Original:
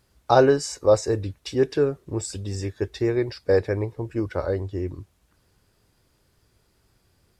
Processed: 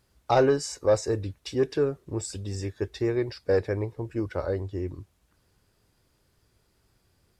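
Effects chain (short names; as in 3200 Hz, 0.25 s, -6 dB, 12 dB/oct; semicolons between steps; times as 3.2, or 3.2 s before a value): soft clip -8.5 dBFS, distortion -20 dB; gain -3 dB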